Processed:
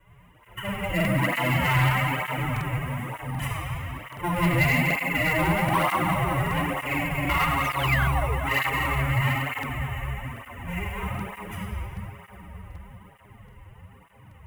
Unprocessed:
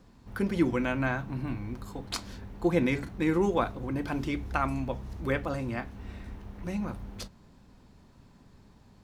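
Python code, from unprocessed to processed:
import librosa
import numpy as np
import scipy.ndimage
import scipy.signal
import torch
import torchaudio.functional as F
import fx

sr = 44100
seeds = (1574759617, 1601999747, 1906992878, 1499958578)

p1 = fx.lower_of_two(x, sr, delay_ms=1.0)
p2 = fx.room_shoebox(p1, sr, seeds[0], volume_m3=3200.0, walls='mixed', distance_m=4.8)
p3 = fx.spec_paint(p2, sr, seeds[1], shape='fall', start_s=4.77, length_s=0.47, low_hz=340.0, high_hz=6800.0, level_db=-30.0)
p4 = fx.peak_eq(p3, sr, hz=2100.0, db=6.5, octaves=0.22)
p5 = fx.echo_bbd(p4, sr, ms=128, stages=2048, feedback_pct=81, wet_db=-11.5)
p6 = fx.sample_hold(p5, sr, seeds[2], rate_hz=4800.0, jitter_pct=0)
p7 = p5 + (p6 * librosa.db_to_amplitude(-3.0))
p8 = fx.stretch_vocoder(p7, sr, factor=1.6)
p9 = fx.curve_eq(p8, sr, hz=(100.0, 240.0, 640.0, 3000.0, 4300.0, 10000.0), db=(0, -12, -1, 6, -22, 3))
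p10 = 10.0 ** (-11.5 / 20.0) * np.tanh(p9 / 10.0 ** (-11.5 / 20.0))
p11 = fx.hum_notches(p10, sr, base_hz=50, count=2)
p12 = fx.buffer_crackle(p11, sr, first_s=0.96, period_s=0.78, block=2048, kind='repeat')
y = fx.flanger_cancel(p12, sr, hz=1.1, depth_ms=4.9)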